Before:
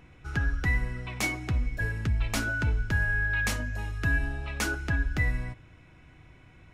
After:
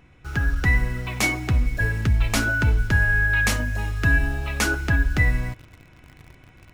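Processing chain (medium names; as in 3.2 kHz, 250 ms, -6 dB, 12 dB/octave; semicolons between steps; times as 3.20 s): de-hum 159.8 Hz, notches 6; level rider gain up to 4 dB; in parallel at -6.5 dB: bit crusher 7-bit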